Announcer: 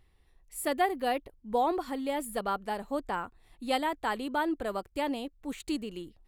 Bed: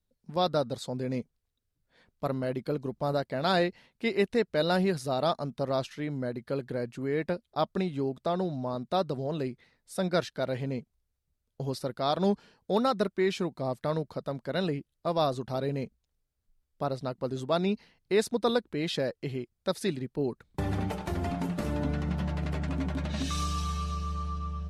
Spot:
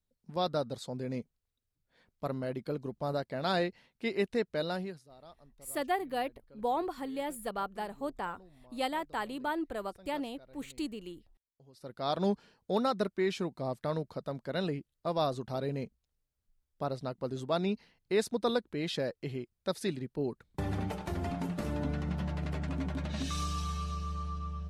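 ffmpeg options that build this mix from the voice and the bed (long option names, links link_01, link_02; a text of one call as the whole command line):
ffmpeg -i stem1.wav -i stem2.wav -filter_complex "[0:a]adelay=5100,volume=-4dB[link_01];[1:a]volume=18.5dB,afade=type=out:start_time=4.49:duration=0.56:silence=0.0794328,afade=type=in:start_time=11.73:duration=0.4:silence=0.0707946[link_02];[link_01][link_02]amix=inputs=2:normalize=0" out.wav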